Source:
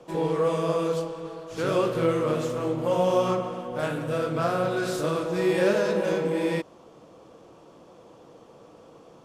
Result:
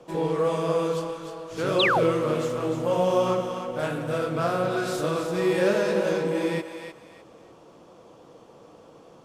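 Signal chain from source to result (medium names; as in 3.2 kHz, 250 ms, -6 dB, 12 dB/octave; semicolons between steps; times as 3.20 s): thinning echo 303 ms, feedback 29%, high-pass 700 Hz, level -7 dB; painted sound fall, 1.79–2.04 s, 390–4300 Hz -22 dBFS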